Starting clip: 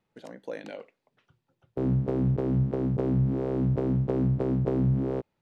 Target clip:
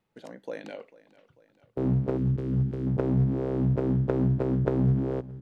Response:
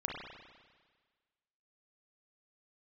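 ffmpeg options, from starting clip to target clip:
-filter_complex "[0:a]asettb=1/sr,asplit=3[link_01][link_02][link_03];[link_01]atrim=end=2.174[link_04];[link_02]atrim=start=2.17:end=2.87,asetpts=PTS-STARTPTS,afade=type=in:duration=0.004:curve=qsin,afade=type=out:start_time=0.696:duration=0.004:curve=qsin,equalizer=frequency=730:width_type=o:width=1.5:gain=-14.5[link_05];[link_03]atrim=start=2.866[link_06];[link_04][link_05]acrossfade=duration=0.004:curve1=hsin:curve2=qsin[link_07];[link_07][link_06]acrossfade=duration=0.004:curve1=qsin:curve2=hsin,asplit=2[link_08][link_09];[link_09]acrusher=bits=2:mix=0:aa=0.5,volume=-3.5dB[link_10];[link_08][link_10]amix=inputs=2:normalize=0,aecho=1:1:444|888|1332|1776:0.1|0.053|0.0281|0.0149"

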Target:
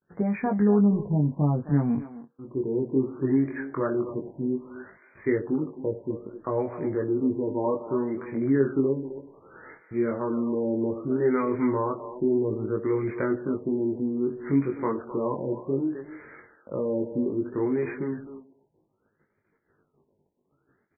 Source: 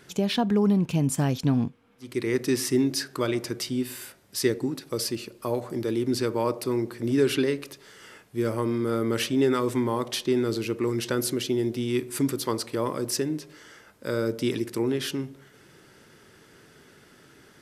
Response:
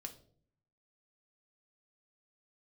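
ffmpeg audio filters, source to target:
-filter_complex "[0:a]agate=range=-43dB:threshold=-50dB:ratio=16:detection=peak,asplit=2[link_01][link_02];[link_02]acompressor=threshold=-31dB:ratio=6,volume=-0.5dB[link_03];[link_01][link_03]amix=inputs=2:normalize=0,atempo=0.84,flanger=delay=19:depth=3.4:speed=0.16,asplit=2[link_04][link_05];[link_05]adelay=260,highpass=300,lowpass=3400,asoftclip=type=hard:threshold=-21dB,volume=-11dB[link_06];[link_04][link_06]amix=inputs=2:normalize=0,afftfilt=real='re*lt(b*sr/1024,990*pow(2500/990,0.5+0.5*sin(2*PI*0.63*pts/sr)))':imag='im*lt(b*sr/1024,990*pow(2500/990,0.5+0.5*sin(2*PI*0.63*pts/sr)))':win_size=1024:overlap=0.75"

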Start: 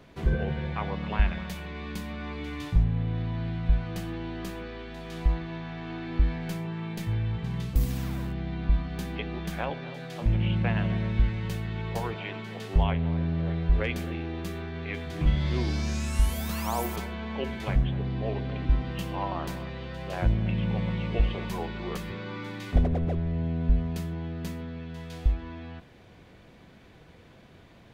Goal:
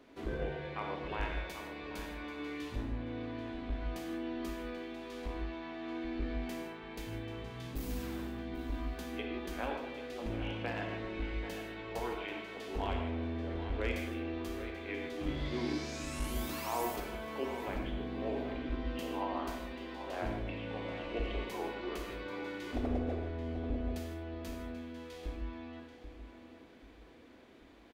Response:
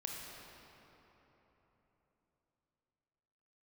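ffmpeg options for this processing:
-filter_complex "[0:a]aeval=exprs='clip(val(0),-1,0.1)':channel_layout=same,lowshelf=frequency=210:width_type=q:width=3:gain=-8,asettb=1/sr,asplit=3[link_01][link_02][link_03];[link_01]atrim=end=17.004[link_04];[link_02]atrim=start=17:end=17.73,asetpts=PTS-STARTPTS,afade=type=in:duration=0.004:curve=qsin,afade=type=out:start_time=0.726:duration=0.004:curve=qsin,acrossover=split=2900[link_05][link_06];[link_06]acompressor=threshold=-53dB:ratio=4:attack=1:release=60[link_07];[link_05][link_07]amix=inputs=2:normalize=0[link_08];[link_03]atrim=start=17.726[link_09];[link_04][link_08]acrossfade=duration=0.004:curve1=hsin:curve2=qsin[link_10];[link_10][link_09]acrossfade=duration=0.004:curve1=qsin:curve2=hsin,asplit=2[link_11][link_12];[link_12]adelay=786,lowpass=frequency=4200:poles=1,volume=-10dB,asplit=2[link_13][link_14];[link_14]adelay=786,lowpass=frequency=4200:poles=1,volume=0.34,asplit=2[link_15][link_16];[link_16]adelay=786,lowpass=frequency=4200:poles=1,volume=0.34,asplit=2[link_17][link_18];[link_18]adelay=786,lowpass=frequency=4200:poles=1,volume=0.34[link_19];[link_11][link_13][link_15][link_17][link_19]amix=inputs=5:normalize=0[link_20];[1:a]atrim=start_sample=2205,afade=type=out:start_time=0.22:duration=0.01,atrim=end_sample=10143[link_21];[link_20][link_21]afir=irnorm=-1:irlink=0,volume=-3.5dB"

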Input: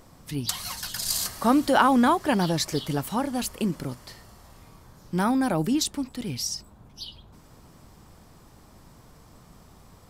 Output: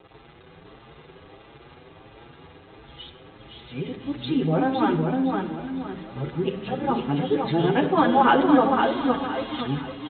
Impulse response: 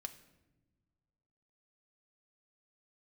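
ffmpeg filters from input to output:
-filter_complex "[0:a]areverse,aresample=8000,acrusher=bits=7:mix=0:aa=0.000001,aresample=44100,highpass=47,equalizer=frequency=400:width_type=o:width=1.2:gain=6,aecho=1:1:510|1020|1530|2040|2550:0.631|0.227|0.0818|0.0294|0.0106[link_01];[1:a]atrim=start_sample=2205,asetrate=29106,aresample=44100[link_02];[link_01][link_02]afir=irnorm=-1:irlink=0,asplit=2[link_03][link_04];[link_04]adelay=7.3,afreqshift=1.5[link_05];[link_03][link_05]amix=inputs=2:normalize=1,volume=4dB"

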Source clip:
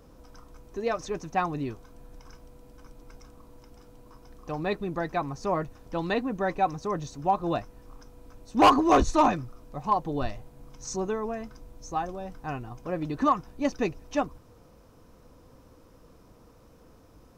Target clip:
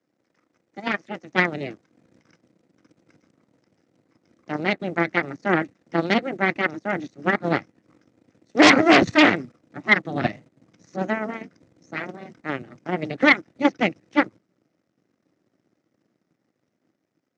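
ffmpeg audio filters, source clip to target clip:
ffmpeg -i in.wav -filter_complex "[0:a]acrossover=split=230|1200|3300[link_01][link_02][link_03][link_04];[link_01]dynaudnorm=framelen=730:gausssize=3:maxgain=6.5dB[link_05];[link_05][link_02][link_03][link_04]amix=inputs=4:normalize=0,bandreject=frequency=780:width=12,acrossover=split=3400[link_06][link_07];[link_07]acompressor=threshold=-55dB:ratio=4:attack=1:release=60[link_08];[link_06][link_08]amix=inputs=2:normalize=0,aeval=exprs='0.398*(cos(1*acos(clip(val(0)/0.398,-1,1)))-cos(1*PI/2))+0.00794*(cos(3*acos(clip(val(0)/0.398,-1,1)))-cos(3*PI/2))+0.141*(cos(6*acos(clip(val(0)/0.398,-1,1)))-cos(6*PI/2))+0.0562*(cos(7*acos(clip(val(0)/0.398,-1,1)))-cos(7*PI/2))':channel_layout=same,highpass=frequency=140:width=0.5412,highpass=frequency=140:width=1.3066,equalizer=frequency=150:width_type=q:width=4:gain=-3,equalizer=frequency=320:width_type=q:width=4:gain=5,equalizer=frequency=460:width_type=q:width=4:gain=-5,equalizer=frequency=1000:width_type=q:width=4:gain=-9,equalizer=frequency=2000:width_type=q:width=4:gain=9,lowpass=frequency=7600:width=0.5412,lowpass=frequency=7600:width=1.3066,volume=3.5dB" out.wav

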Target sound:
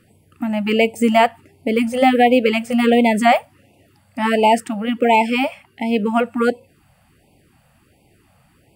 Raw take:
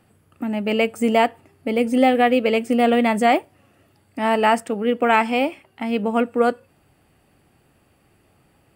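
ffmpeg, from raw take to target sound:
ffmpeg -i in.wav -af "afftfilt=real='re*(1-between(b*sr/1024,320*pow(1500/320,0.5+0.5*sin(2*PI*1.4*pts/sr))/1.41,320*pow(1500/320,0.5+0.5*sin(2*PI*1.4*pts/sr))*1.41))':imag='im*(1-between(b*sr/1024,320*pow(1500/320,0.5+0.5*sin(2*PI*1.4*pts/sr))/1.41,320*pow(1500/320,0.5+0.5*sin(2*PI*1.4*pts/sr))*1.41))':win_size=1024:overlap=0.75,volume=4dB" out.wav

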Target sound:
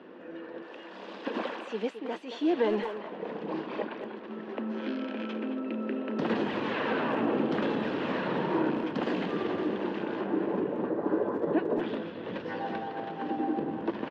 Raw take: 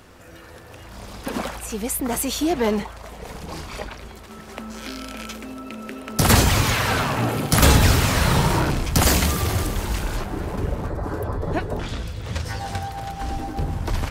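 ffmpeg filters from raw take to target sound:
ffmpeg -i in.wav -filter_complex "[0:a]asettb=1/sr,asplit=3[link_01][link_02][link_03];[link_01]atrim=end=0.624[link_04];[link_02]atrim=start=0.62:end=2.95,asetpts=PTS-STARTPTS,afade=type=in:duration=0.004:curve=qsin,afade=type=out:start_time=2.326:duration=0.004:curve=qsin,aemphasis=mode=production:type=riaa[link_05];[link_03]atrim=start=2.946[link_06];[link_04][link_05]acrossfade=duration=0.004:curve1=hsin:curve2=qsin[link_07];[link_07][link_06]acrossfade=duration=0.004:curve1=qsin:curve2=hsin,acompressor=threshold=-23dB:ratio=3,asoftclip=type=tanh:threshold=-18dB,highpass=frequency=210:width=0.5412,highpass=frequency=210:width=1.3066,equalizer=frequency=210:width_type=q:width=4:gain=4,equalizer=frequency=330:width_type=q:width=4:gain=7,equalizer=frequency=480:width_type=q:width=4:gain=4,equalizer=frequency=740:width_type=q:width=4:gain=-4,equalizer=frequency=1300:width_type=q:width=4:gain=-7,equalizer=frequency=2200:width_type=q:width=4:gain=-9,lowpass=frequency=2700:width=0.5412,lowpass=frequency=2700:width=1.3066,asplit=2[link_08][link_09];[link_09]adelay=220,highpass=300,lowpass=3400,asoftclip=type=hard:threshold=-24dB,volume=-8dB[link_10];[link_08][link_10]amix=inputs=2:normalize=0" out.wav

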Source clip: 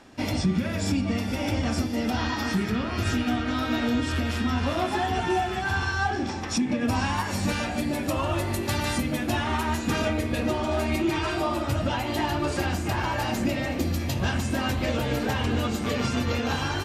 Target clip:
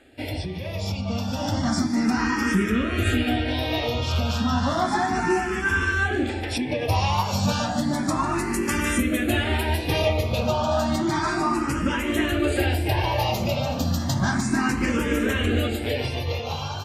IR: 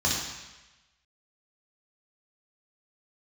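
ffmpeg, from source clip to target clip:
-filter_complex "[0:a]dynaudnorm=framelen=220:gausssize=11:maxgain=6.5dB,asplit=2[link_01][link_02];[link_02]afreqshift=0.32[link_03];[link_01][link_03]amix=inputs=2:normalize=1"

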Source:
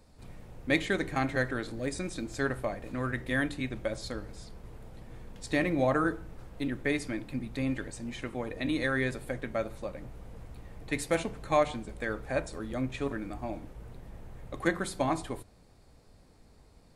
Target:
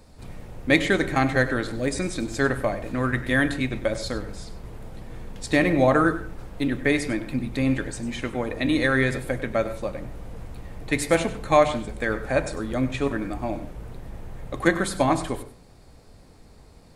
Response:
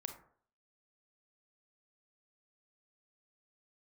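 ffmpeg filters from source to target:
-filter_complex "[0:a]asplit=2[link_01][link_02];[1:a]atrim=start_sample=2205,asetrate=70560,aresample=44100,adelay=98[link_03];[link_02][link_03]afir=irnorm=-1:irlink=0,volume=-6.5dB[link_04];[link_01][link_04]amix=inputs=2:normalize=0,volume=8dB"

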